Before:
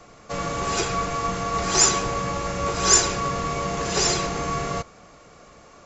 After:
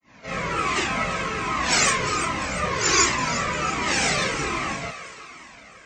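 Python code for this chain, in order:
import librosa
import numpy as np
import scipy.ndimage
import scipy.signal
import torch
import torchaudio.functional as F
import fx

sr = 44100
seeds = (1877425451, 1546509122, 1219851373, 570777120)

y = scipy.signal.sosfilt(scipy.signal.butter(2, 46.0, 'highpass', fs=sr, output='sos'), x)
y = fx.peak_eq(y, sr, hz=260.0, db=10.0, octaves=0.91)
y = fx.granulator(y, sr, seeds[0], grain_ms=256.0, per_s=29.0, spray_ms=100.0, spread_st=3)
y = fx.peak_eq(y, sr, hz=2200.0, db=14.0, octaves=1.2)
y = fx.echo_thinned(y, sr, ms=348, feedback_pct=51, hz=600.0, wet_db=-11.0)
y = fx.comb_cascade(y, sr, direction='falling', hz=1.3)
y = F.gain(torch.from_numpy(y), 6.5).numpy()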